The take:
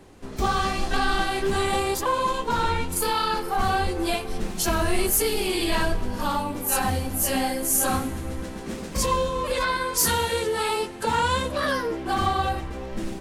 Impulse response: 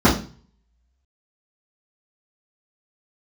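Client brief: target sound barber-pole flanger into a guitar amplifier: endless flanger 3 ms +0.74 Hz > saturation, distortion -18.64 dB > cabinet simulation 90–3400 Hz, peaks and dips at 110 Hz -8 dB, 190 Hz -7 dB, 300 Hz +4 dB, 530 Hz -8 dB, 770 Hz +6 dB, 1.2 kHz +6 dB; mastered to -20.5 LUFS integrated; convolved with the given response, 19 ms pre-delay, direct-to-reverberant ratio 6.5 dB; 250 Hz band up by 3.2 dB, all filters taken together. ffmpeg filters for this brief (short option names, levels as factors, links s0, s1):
-filter_complex "[0:a]equalizer=f=250:t=o:g=4,asplit=2[s0][s1];[1:a]atrim=start_sample=2205,adelay=19[s2];[s1][s2]afir=irnorm=-1:irlink=0,volume=0.0335[s3];[s0][s3]amix=inputs=2:normalize=0,asplit=2[s4][s5];[s5]adelay=3,afreqshift=0.74[s6];[s4][s6]amix=inputs=2:normalize=1,asoftclip=threshold=0.168,highpass=90,equalizer=f=110:t=q:w=4:g=-8,equalizer=f=190:t=q:w=4:g=-7,equalizer=f=300:t=q:w=4:g=4,equalizer=f=530:t=q:w=4:g=-8,equalizer=f=770:t=q:w=4:g=6,equalizer=f=1200:t=q:w=4:g=6,lowpass=f=3400:w=0.5412,lowpass=f=3400:w=1.3066,volume=1.68"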